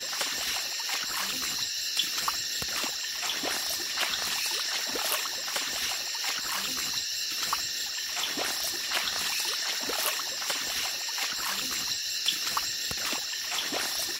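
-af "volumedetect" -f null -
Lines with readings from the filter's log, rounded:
mean_volume: -31.2 dB
max_volume: -10.2 dB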